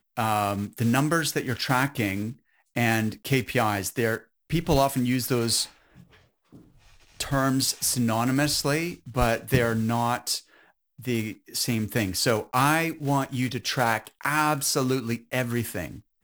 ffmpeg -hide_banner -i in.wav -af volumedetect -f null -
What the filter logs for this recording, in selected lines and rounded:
mean_volume: -26.3 dB
max_volume: -8.3 dB